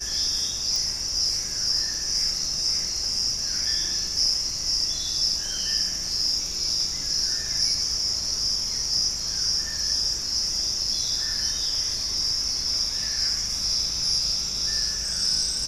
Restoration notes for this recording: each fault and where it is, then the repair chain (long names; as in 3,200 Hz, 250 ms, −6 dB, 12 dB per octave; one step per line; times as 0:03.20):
0:00.76: click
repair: click removal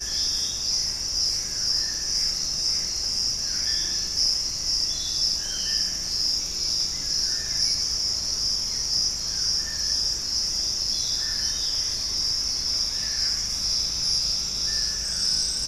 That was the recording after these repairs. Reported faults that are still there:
none of them is left